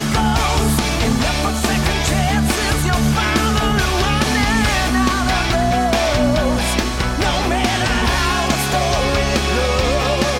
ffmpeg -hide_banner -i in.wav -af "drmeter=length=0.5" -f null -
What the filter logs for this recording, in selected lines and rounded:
Channel 1: DR: 8.4
Overall DR: 8.4